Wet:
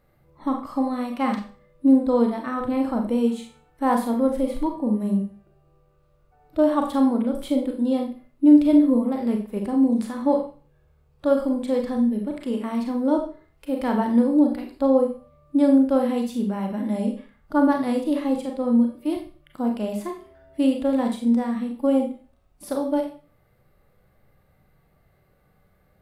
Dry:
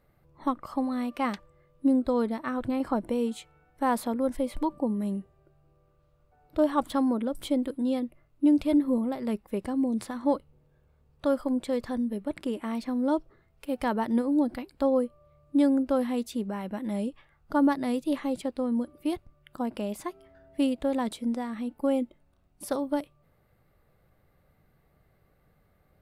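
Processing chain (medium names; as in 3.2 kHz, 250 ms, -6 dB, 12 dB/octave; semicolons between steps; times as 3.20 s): harmonic-percussive split percussive -7 dB; Schroeder reverb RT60 0.38 s, combs from 30 ms, DRR 2.5 dB; trim +4.5 dB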